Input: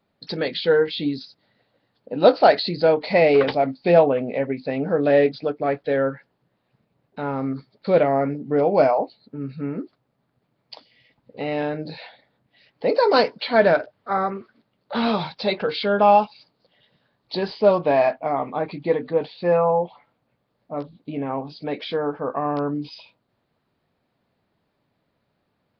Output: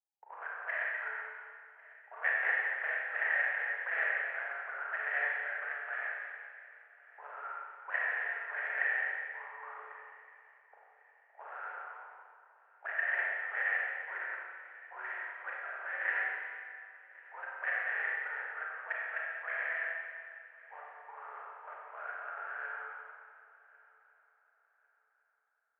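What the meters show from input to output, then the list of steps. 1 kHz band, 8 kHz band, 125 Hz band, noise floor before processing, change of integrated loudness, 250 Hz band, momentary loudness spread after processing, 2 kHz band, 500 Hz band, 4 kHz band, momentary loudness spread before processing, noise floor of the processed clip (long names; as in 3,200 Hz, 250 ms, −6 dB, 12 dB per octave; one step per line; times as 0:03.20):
−19.5 dB, can't be measured, below −40 dB, −73 dBFS, −14.0 dB, below −40 dB, 19 LU, 0.0 dB, −31.0 dB, below −25 dB, 15 LU, −73 dBFS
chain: noise gate with hold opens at −39 dBFS
sample-rate reduction 1,000 Hz, jitter 20%
envelope filter 670–1,700 Hz, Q 10, up, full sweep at −17 dBFS
on a send: echo machine with several playback heads 366 ms, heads first and third, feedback 45%, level −23 dB
on the sum: four-comb reverb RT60 1.9 s, combs from 31 ms, DRR −3.5 dB
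single-sideband voice off tune +150 Hz 270–2,400 Hz
level −3.5 dB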